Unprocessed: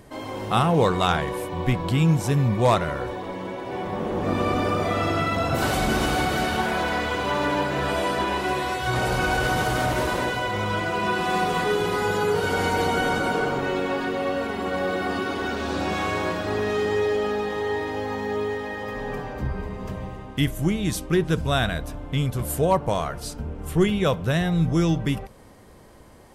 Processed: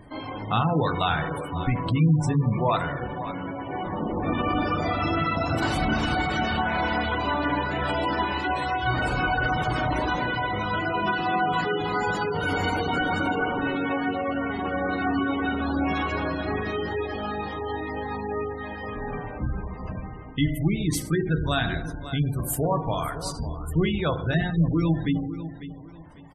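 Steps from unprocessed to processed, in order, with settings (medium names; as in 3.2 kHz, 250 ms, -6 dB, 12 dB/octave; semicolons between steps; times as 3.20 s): in parallel at 0 dB: peak limiter -16 dBFS, peak gain reduction 8.5 dB; on the sum: reverb removal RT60 0.93 s; on a send: feedback delay 548 ms, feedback 28%, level -13 dB; on the sum: FDN reverb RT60 1.2 s, low-frequency decay 1×, high-frequency decay 0.75×, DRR 5.5 dB; hard clipper -8 dBFS, distortion -30 dB; spectral gate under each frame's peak -25 dB strong; peaking EQ 490 Hz -6 dB 0.72 oct; trim -5 dB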